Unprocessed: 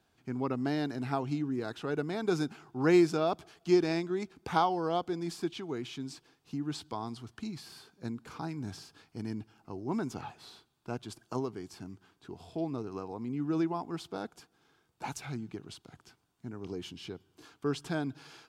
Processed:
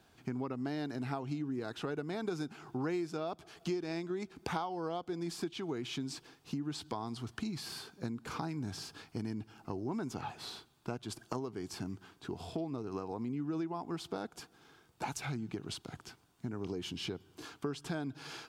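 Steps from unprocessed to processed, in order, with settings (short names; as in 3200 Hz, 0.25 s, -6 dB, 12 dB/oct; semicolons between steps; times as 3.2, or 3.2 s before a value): compressor 6:1, threshold -42 dBFS, peak gain reduction 20.5 dB; gain +7 dB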